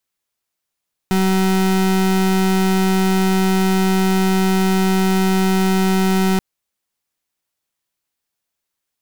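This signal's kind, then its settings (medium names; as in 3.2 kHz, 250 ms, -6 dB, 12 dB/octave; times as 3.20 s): pulse 189 Hz, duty 34% -15.5 dBFS 5.28 s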